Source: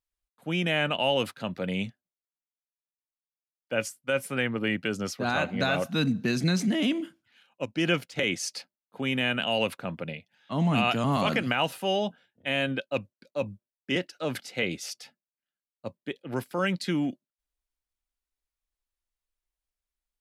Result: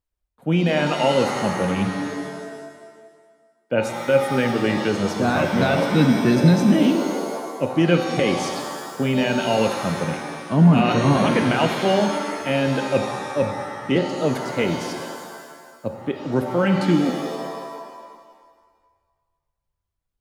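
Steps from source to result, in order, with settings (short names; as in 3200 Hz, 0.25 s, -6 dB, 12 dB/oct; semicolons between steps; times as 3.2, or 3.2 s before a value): tilt shelf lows +6.5 dB, about 1100 Hz; reverb removal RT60 0.74 s; shimmer reverb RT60 1.6 s, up +7 st, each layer -2 dB, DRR 5.5 dB; gain +4.5 dB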